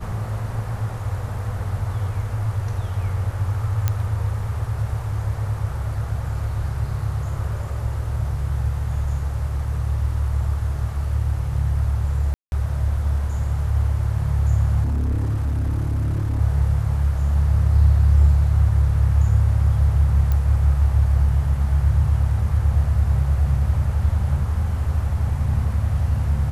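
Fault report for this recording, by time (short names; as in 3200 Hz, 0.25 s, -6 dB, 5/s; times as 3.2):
3.88 pop -8 dBFS
12.34–12.52 gap 0.181 s
14.83–16.41 clipped -18.5 dBFS
20.32 pop -12 dBFS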